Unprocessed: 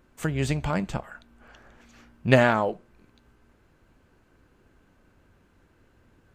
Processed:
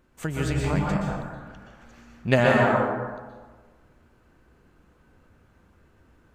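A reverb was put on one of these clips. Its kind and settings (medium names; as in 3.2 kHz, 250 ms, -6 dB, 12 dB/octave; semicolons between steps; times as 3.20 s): plate-style reverb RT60 1.4 s, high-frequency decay 0.45×, pre-delay 110 ms, DRR -2 dB; trim -2.5 dB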